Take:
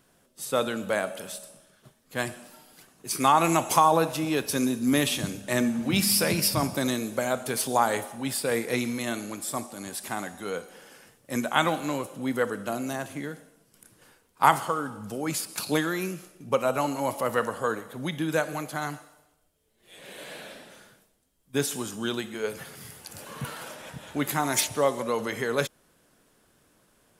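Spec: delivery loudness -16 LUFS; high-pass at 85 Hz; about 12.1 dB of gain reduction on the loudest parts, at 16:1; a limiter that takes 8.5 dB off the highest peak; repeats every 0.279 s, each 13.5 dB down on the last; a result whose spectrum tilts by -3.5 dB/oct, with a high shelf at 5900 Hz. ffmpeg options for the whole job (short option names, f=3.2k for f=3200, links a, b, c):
-af "highpass=85,highshelf=f=5.9k:g=8,acompressor=threshold=-26dB:ratio=16,alimiter=limit=-20.5dB:level=0:latency=1,aecho=1:1:279|558:0.211|0.0444,volume=17dB"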